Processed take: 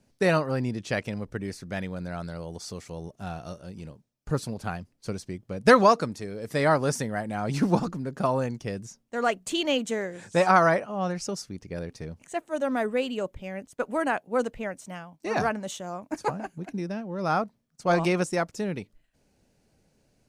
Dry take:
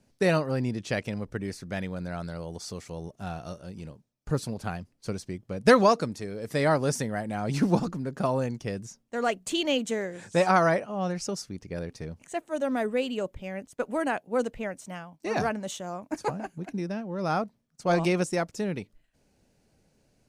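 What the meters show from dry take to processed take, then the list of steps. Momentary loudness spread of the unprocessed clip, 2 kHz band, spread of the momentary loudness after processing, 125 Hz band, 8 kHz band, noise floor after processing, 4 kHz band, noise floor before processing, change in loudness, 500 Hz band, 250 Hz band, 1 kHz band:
14 LU, +2.5 dB, 15 LU, 0.0 dB, 0.0 dB, -70 dBFS, +0.5 dB, -70 dBFS, +1.5 dB, +1.0 dB, 0.0 dB, +3.0 dB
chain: dynamic bell 1.2 kHz, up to +4 dB, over -36 dBFS, Q 1

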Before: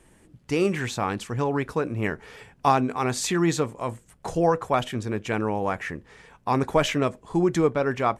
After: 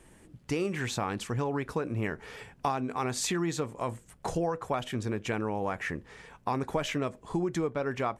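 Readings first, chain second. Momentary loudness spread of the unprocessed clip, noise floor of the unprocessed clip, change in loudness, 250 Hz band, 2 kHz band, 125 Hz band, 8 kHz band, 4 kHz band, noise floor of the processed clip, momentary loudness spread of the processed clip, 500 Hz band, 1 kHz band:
10 LU, -59 dBFS, -7.0 dB, -7.0 dB, -5.5 dB, -5.5 dB, -4.0 dB, -5.0 dB, -59 dBFS, 6 LU, -7.5 dB, -8.0 dB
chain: compression 4:1, threshold -28 dBFS, peak gain reduction 12 dB

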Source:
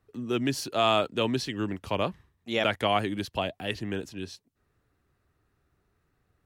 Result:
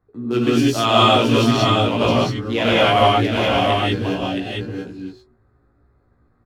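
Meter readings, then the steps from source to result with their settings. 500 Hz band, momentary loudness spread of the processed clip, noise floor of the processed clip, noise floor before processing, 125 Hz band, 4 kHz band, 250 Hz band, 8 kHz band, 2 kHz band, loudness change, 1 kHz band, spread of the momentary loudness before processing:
+11.0 dB, 14 LU, -61 dBFS, -74 dBFS, +15.0 dB, +12.5 dB, +13.0 dB, +8.5 dB, +11.0 dB, +11.5 dB, +13.0 dB, 11 LU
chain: local Wiener filter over 15 samples; doubling 17 ms -3.5 dB; de-hum 124.7 Hz, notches 5; on a send: delay 671 ms -5 dB; on the sum: gated-style reverb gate 220 ms rising, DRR -5.5 dB; trim +3 dB

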